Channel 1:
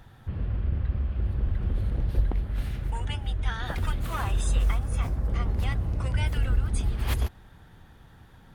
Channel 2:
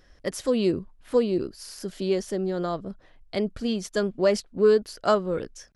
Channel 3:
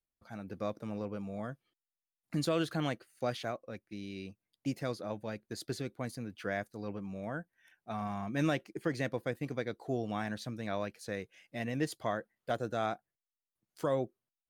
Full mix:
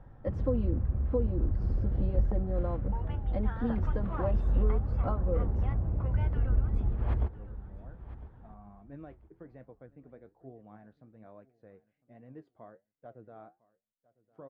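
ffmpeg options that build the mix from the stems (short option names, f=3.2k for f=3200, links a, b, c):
-filter_complex "[0:a]volume=-2.5dB,asplit=2[a][b];[b]volume=-16.5dB[c];[1:a]acompressor=threshold=-27dB:ratio=6,aecho=1:1:3.8:0.86,volume=-5dB,asplit=2[d][e];[2:a]flanger=delay=6.4:depth=6.7:regen=67:speed=1.2:shape=triangular,adelay=550,volume=-11dB,asplit=2[f][g];[g]volume=-22dB[h];[e]apad=whole_len=663314[i];[f][i]sidechaincompress=threshold=-56dB:ratio=8:attack=16:release=105[j];[c][h]amix=inputs=2:normalize=0,aecho=0:1:1004|2008|3012|4016:1|0.22|0.0484|0.0106[k];[a][d][j][k]amix=inputs=4:normalize=0,lowpass=1k"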